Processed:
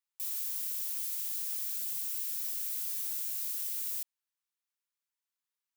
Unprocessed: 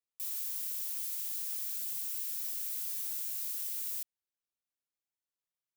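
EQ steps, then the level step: brick-wall FIR high-pass 830 Hz; +1.5 dB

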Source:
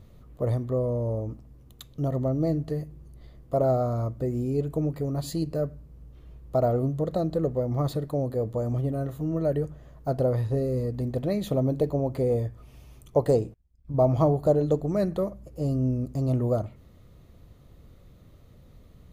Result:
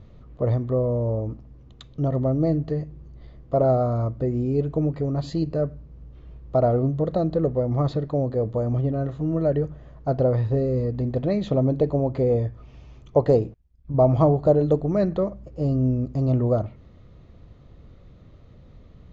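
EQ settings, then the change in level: steep low-pass 7.3 kHz 96 dB/octave; distance through air 130 m; +4.0 dB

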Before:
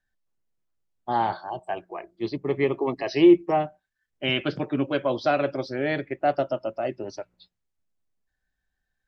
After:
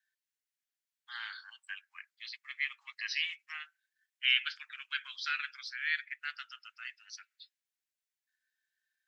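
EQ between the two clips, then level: steep high-pass 1.5 kHz 48 dB/octave; 0.0 dB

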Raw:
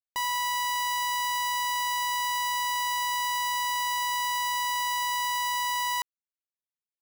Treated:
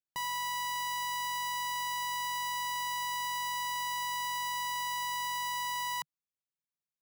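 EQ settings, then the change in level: peaking EQ 150 Hz +13.5 dB 0.91 oct; -6.5 dB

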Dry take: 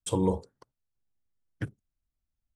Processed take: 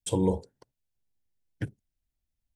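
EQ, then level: peaking EQ 1.2 kHz -14 dB 0.35 oct; +1.0 dB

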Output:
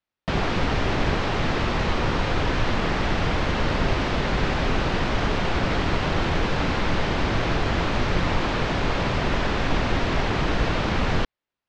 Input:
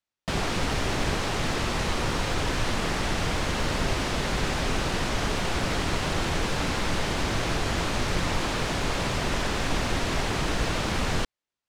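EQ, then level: distance through air 170 m; +4.5 dB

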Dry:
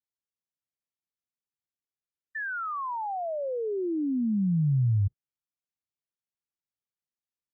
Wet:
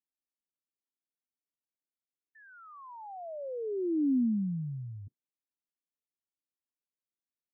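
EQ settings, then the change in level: ladder band-pass 310 Hz, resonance 45%; +7.0 dB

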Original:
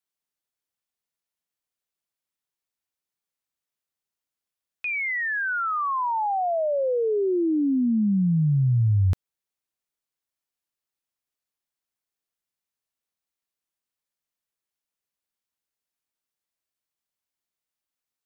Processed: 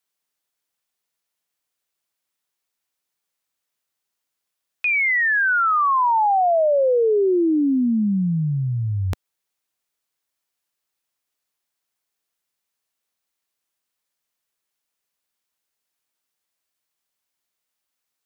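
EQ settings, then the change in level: bass shelf 300 Hz -6 dB; dynamic bell 110 Hz, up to -6 dB, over -40 dBFS, Q 1; +8.0 dB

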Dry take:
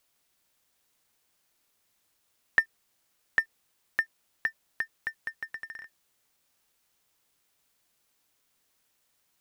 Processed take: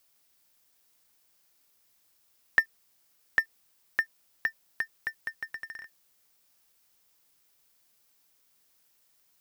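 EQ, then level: peaking EQ 5.1 kHz +3.5 dB 0.36 oct; treble shelf 11 kHz +8.5 dB; 0.0 dB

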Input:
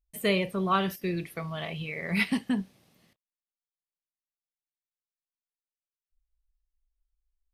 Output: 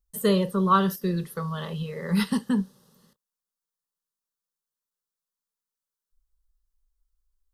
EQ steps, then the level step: static phaser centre 460 Hz, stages 8; +6.5 dB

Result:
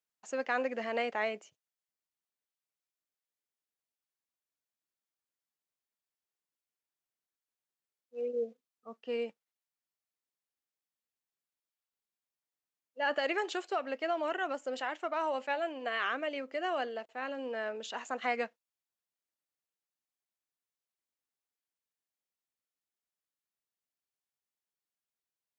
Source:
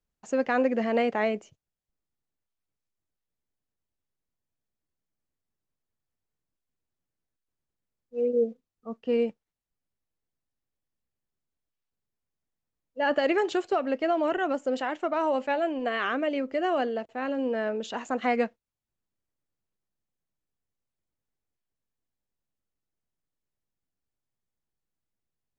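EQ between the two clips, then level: high-pass 980 Hz 6 dB/octave; -2.0 dB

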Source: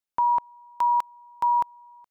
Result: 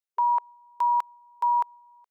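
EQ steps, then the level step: dynamic bell 1.4 kHz, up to +5 dB, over -35 dBFS, Q 0.7; brick-wall FIR high-pass 420 Hz; -5.0 dB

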